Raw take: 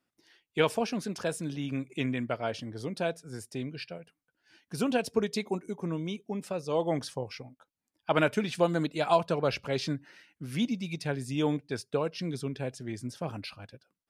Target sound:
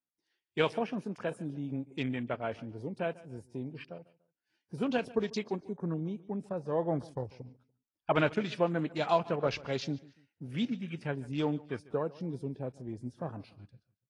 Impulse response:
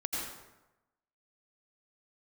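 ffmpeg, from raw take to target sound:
-filter_complex "[0:a]afwtdn=0.00794,asettb=1/sr,asplit=3[link_01][link_02][link_03];[link_01]atrim=end=5.604[link_04];[link_02]atrim=start=5.6:end=8.3,asetpts=PTS-STARTPTS,afade=type=in:duration=0.004:curve=qsin,afade=type=out:start_time=2.696:duration=0.004:curve=qsin,lowshelf=frequency=96:gain=10[link_05];[link_03]atrim=start=8.296[link_06];[link_04][link_05]acrossfade=duration=0.004:curve1=hsin:curve2=qsin[link_07];[link_07][link_06]acrossfade=duration=0.004:curve1=qsin:curve2=hsin,aecho=1:1:145|290:0.0891|0.0285,volume=-3dB" -ar 24000 -c:a aac -b:a 32k

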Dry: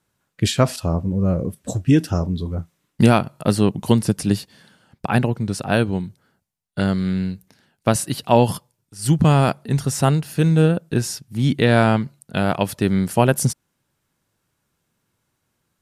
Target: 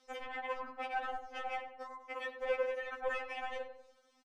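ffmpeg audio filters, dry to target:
ffmpeg -i in.wav -filter_complex "[0:a]asoftclip=type=tanh:threshold=-20dB,bass=frequency=250:gain=-4,treble=frequency=4000:gain=-14,acompressor=mode=upward:threshold=-42dB:ratio=2.5,asetrate=164493,aresample=44100,lowpass=6900,bandreject=frequency=142.5:width_type=h:width=4,bandreject=frequency=285:width_type=h:width=4,bandreject=frequency=427.5:width_type=h:width=4,bandreject=frequency=570:width_type=h:width=4,bandreject=frequency=712.5:width_type=h:width=4,bandreject=frequency=855:width_type=h:width=4,bandreject=frequency=997.5:width_type=h:width=4,bandreject=frequency=1140:width_type=h:width=4,bandreject=frequency=1282.5:width_type=h:width=4,bandreject=frequency=1425:width_type=h:width=4,bandreject=frequency=1567.5:width_type=h:width=4,bandreject=frequency=1710:width_type=h:width=4,bandreject=frequency=1852.5:width_type=h:width=4,bandreject=frequency=1995:width_type=h:width=4,bandreject=frequency=2137.5:width_type=h:width=4,bandreject=frequency=2280:width_type=h:width=4,bandreject=frequency=2422.5:width_type=h:width=4,bandreject=frequency=2565:width_type=h:width=4,bandreject=frequency=2707.5:width_type=h:width=4,bandreject=frequency=2850:width_type=h:width=4,bandreject=frequency=2992.5:width_type=h:width=4,bandreject=frequency=3135:width_type=h:width=4,bandreject=frequency=3277.5:width_type=h:width=4,bandreject=frequency=3420:width_type=h:width=4,bandreject=frequency=3562.5:width_type=h:width=4,bandreject=frequency=3705:width_type=h:width=4,bandreject=frequency=3847.5:width_type=h:width=4,bandreject=frequency=3990:width_type=h:width=4,bandreject=frequency=4132.5:width_type=h:width=4,bandreject=frequency=4275:width_type=h:width=4,bandreject=frequency=4417.5:width_type=h:width=4,bandreject=frequency=4560:width_type=h:width=4,bandreject=frequency=4702.5:width_type=h:width=4,bandreject=frequency=4845:width_type=h:width=4,bandreject=frequency=4987.5:width_type=h:width=4,acompressor=threshold=-38dB:ratio=3,afwtdn=0.00794,alimiter=level_in=9.5dB:limit=-24dB:level=0:latency=1:release=56,volume=-9.5dB,asplit=2[link_01][link_02];[link_02]adelay=95,lowpass=frequency=1600:poles=1,volume=-8dB,asplit=2[link_03][link_04];[link_04]adelay=95,lowpass=frequency=1600:poles=1,volume=0.47,asplit=2[link_05][link_06];[link_06]adelay=95,lowpass=frequency=1600:poles=1,volume=0.47,asplit=2[link_07][link_08];[link_08]adelay=95,lowpass=frequency=1600:poles=1,volume=0.47,asplit=2[link_09][link_10];[link_10]adelay=95,lowpass=frequency=1600:poles=1,volume=0.47[link_11];[link_01][link_03][link_05][link_07][link_09][link_11]amix=inputs=6:normalize=0,afftfilt=real='re*3.46*eq(mod(b,12),0)':imag='im*3.46*eq(mod(b,12),0)':win_size=2048:overlap=0.75,volume=5.5dB" out.wav

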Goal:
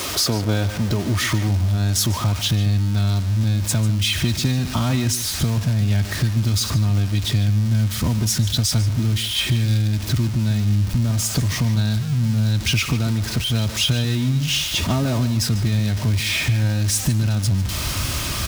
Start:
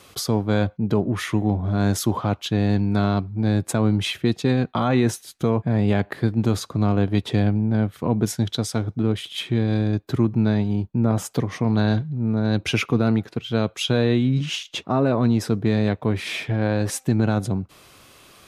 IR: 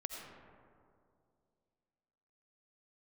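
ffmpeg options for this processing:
-filter_complex "[0:a]aeval=exprs='val(0)+0.5*0.0631*sgn(val(0))':channel_layout=same,highpass=42,equalizer=frequency=5300:width_type=o:width=0.69:gain=4.5,aecho=1:1:3.2:0.32,asubboost=boost=9.5:cutoff=130,acrossover=split=2300[link_01][link_02];[link_01]acompressor=threshold=-19dB:ratio=6[link_03];[link_03][link_02]amix=inputs=2:normalize=0,aeval=exprs='val(0)*gte(abs(val(0)),0.015)':channel_layout=same,asplit=2[link_04][link_05];[link_05]adelay=145.8,volume=-13dB,highshelf=frequency=4000:gain=-3.28[link_06];[link_04][link_06]amix=inputs=2:normalize=0,volume=1.5dB"

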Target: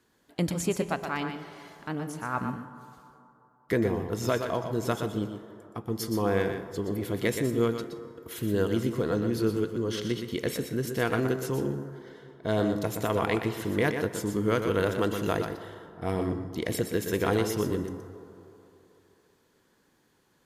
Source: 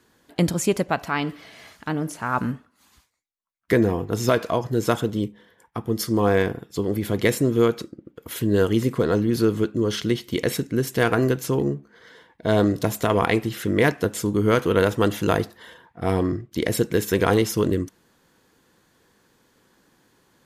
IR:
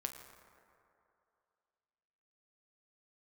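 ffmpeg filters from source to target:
-filter_complex "[0:a]asplit=2[link_01][link_02];[1:a]atrim=start_sample=2205,asetrate=37044,aresample=44100,adelay=121[link_03];[link_02][link_03]afir=irnorm=-1:irlink=0,volume=-6dB[link_04];[link_01][link_04]amix=inputs=2:normalize=0,volume=-7.5dB"

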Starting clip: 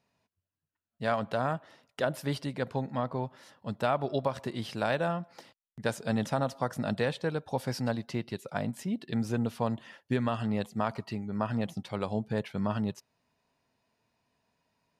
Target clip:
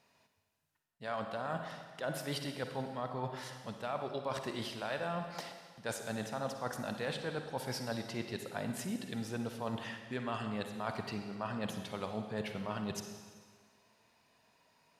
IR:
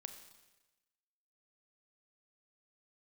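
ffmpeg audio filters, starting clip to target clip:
-filter_complex "[0:a]lowshelf=frequency=350:gain=-8.5,areverse,acompressor=threshold=-44dB:ratio=6,areverse[link_01];[1:a]atrim=start_sample=2205,asetrate=30429,aresample=44100[link_02];[link_01][link_02]afir=irnorm=-1:irlink=0,volume=11.5dB"

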